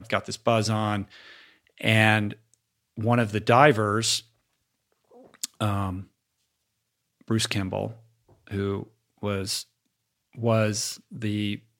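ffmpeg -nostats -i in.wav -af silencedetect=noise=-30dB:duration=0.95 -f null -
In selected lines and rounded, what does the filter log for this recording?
silence_start: 4.19
silence_end: 5.44 | silence_duration: 1.25
silence_start: 6.00
silence_end: 7.30 | silence_duration: 1.30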